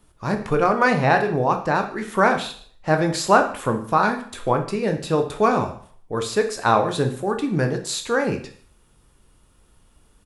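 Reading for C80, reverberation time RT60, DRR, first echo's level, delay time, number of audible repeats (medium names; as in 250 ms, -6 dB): 13.5 dB, 0.50 s, 5.0 dB, -23.0 dB, 148 ms, 1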